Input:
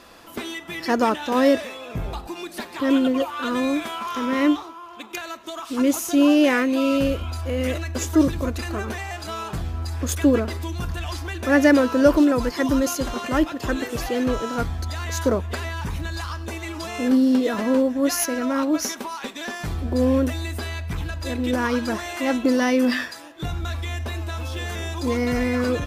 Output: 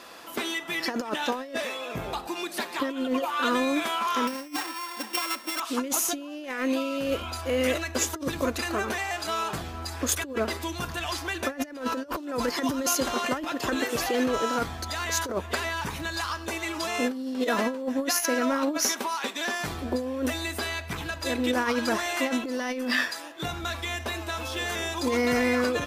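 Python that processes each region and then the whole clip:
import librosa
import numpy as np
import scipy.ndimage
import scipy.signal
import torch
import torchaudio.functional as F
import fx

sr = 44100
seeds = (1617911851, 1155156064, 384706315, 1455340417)

y = fx.chain(x, sr, fx.sample_sort(block=16),
    fx.comb(ms=3.8, depth=0.86), at=(4.27, 5.6))
y = fx.highpass(y, sr, hz=400.0, slope=6)
y = fx.over_compress(y, sr, threshold_db=-26.0, ratio=-0.5)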